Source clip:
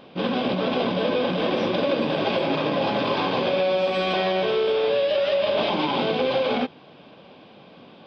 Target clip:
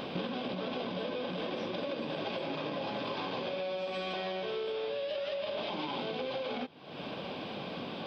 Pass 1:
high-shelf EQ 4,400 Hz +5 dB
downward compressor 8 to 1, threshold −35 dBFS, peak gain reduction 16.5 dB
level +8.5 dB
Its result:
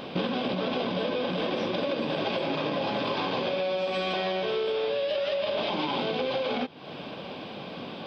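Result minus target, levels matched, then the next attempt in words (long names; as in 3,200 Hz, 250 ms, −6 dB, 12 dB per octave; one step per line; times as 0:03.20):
downward compressor: peak gain reduction −7.5 dB
high-shelf EQ 4,400 Hz +5 dB
downward compressor 8 to 1, threshold −43.5 dBFS, peak gain reduction 24 dB
level +8.5 dB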